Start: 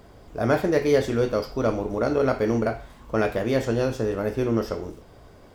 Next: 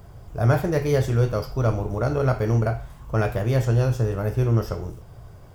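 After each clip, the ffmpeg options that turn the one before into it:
ffmpeg -i in.wav -af "equalizer=frequency=125:width_type=o:width=1:gain=8,equalizer=frequency=250:width_type=o:width=1:gain=-12,equalizer=frequency=500:width_type=o:width=1:gain=-6,equalizer=frequency=1000:width_type=o:width=1:gain=-3,equalizer=frequency=2000:width_type=o:width=1:gain=-7,equalizer=frequency=4000:width_type=o:width=1:gain=-8,equalizer=frequency=8000:width_type=o:width=1:gain=-3,volume=6dB" out.wav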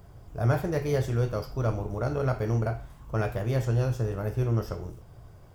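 ffmpeg -i in.wav -af "tremolo=f=240:d=0.261,volume=-4.5dB" out.wav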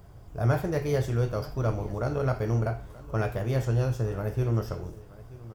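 ffmpeg -i in.wav -af "aecho=1:1:929:0.112" out.wav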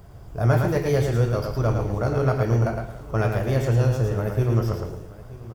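ffmpeg -i in.wav -af "aecho=1:1:111|222|333|444:0.562|0.157|0.0441|0.0123,volume=4.5dB" out.wav

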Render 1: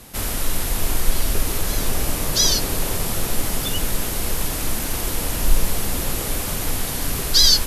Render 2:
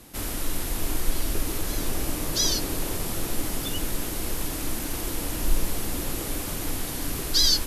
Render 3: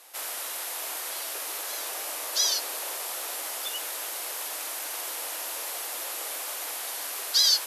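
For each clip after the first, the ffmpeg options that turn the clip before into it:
ffmpeg -i in.wav -af "equalizer=frequency=310:width_type=o:width=0.43:gain=8,volume=-6.5dB" out.wav
ffmpeg -i in.wav -af "highpass=frequency=580:width=0.5412,highpass=frequency=580:width=1.3066" out.wav

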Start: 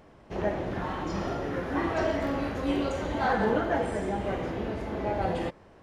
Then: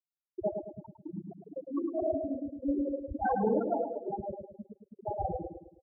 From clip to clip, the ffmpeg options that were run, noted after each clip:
ffmpeg -i in.wav -filter_complex "[0:a]afftfilt=real='re*gte(hypot(re,im),0.224)':imag='im*gte(hypot(re,im),0.224)':win_size=1024:overlap=0.75,asplit=2[link_01][link_02];[link_02]adelay=107,lowpass=frequency=1000:poles=1,volume=-5dB,asplit=2[link_03][link_04];[link_04]adelay=107,lowpass=frequency=1000:poles=1,volume=0.47,asplit=2[link_05][link_06];[link_06]adelay=107,lowpass=frequency=1000:poles=1,volume=0.47,asplit=2[link_07][link_08];[link_08]adelay=107,lowpass=frequency=1000:poles=1,volume=0.47,asplit=2[link_09][link_10];[link_10]adelay=107,lowpass=frequency=1000:poles=1,volume=0.47,asplit=2[link_11][link_12];[link_12]adelay=107,lowpass=frequency=1000:poles=1,volume=0.47[link_13];[link_01][link_03][link_05][link_07][link_09][link_11][link_13]amix=inputs=7:normalize=0,volume=-1dB" out.wav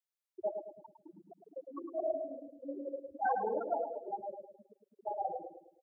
ffmpeg -i in.wav -af "highpass=620" out.wav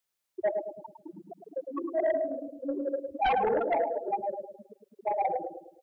ffmpeg -i in.wav -af "aeval=exprs='0.0841*sin(PI/2*2*val(0)/0.0841)':channel_layout=same" out.wav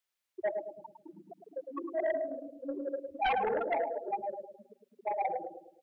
ffmpeg -i in.wav -af "equalizer=frequency=2300:width=0.6:gain=5.5,bandreject=frequency=60:width_type=h:width=6,bandreject=frequency=120:width_type=h:width=6,bandreject=frequency=180:width_type=h:width=6,bandreject=frequency=240:width_type=h:width=6,bandreject=frequency=300:width_type=h:width=6,volume=-5.5dB" out.wav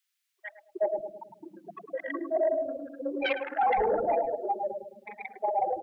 ffmpeg -i in.wav -filter_complex "[0:a]acrossover=split=210|1300[link_01][link_02][link_03];[link_02]adelay=370[link_04];[link_01]adelay=520[link_05];[link_05][link_04][link_03]amix=inputs=3:normalize=0,volume=6dB" out.wav

